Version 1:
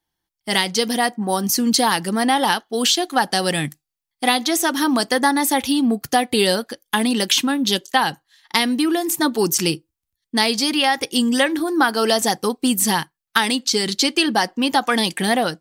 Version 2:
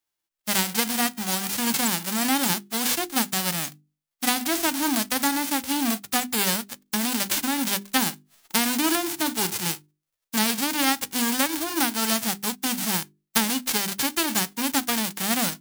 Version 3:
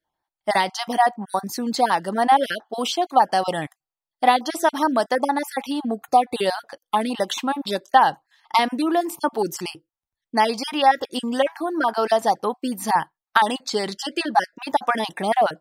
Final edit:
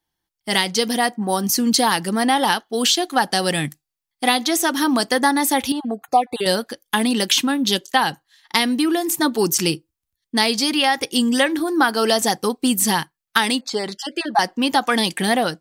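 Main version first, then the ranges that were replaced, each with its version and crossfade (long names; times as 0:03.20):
1
0:05.72–0:06.46: punch in from 3
0:13.61–0:14.39: punch in from 3
not used: 2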